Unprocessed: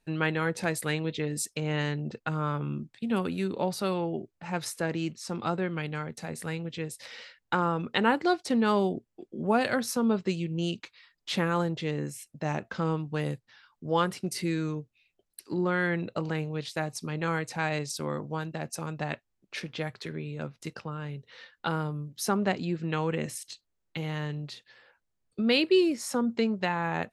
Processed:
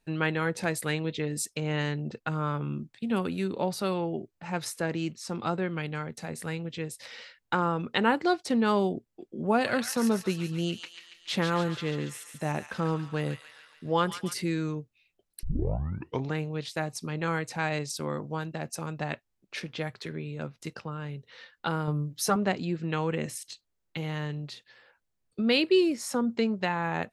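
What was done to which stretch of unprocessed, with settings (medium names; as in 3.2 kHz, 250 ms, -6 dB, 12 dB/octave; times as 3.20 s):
9.37–14.34 s: feedback echo behind a high-pass 141 ms, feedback 60%, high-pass 1.8 kHz, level -6 dB
15.43 s: tape start 0.93 s
21.87–22.36 s: comb 6.6 ms, depth 92%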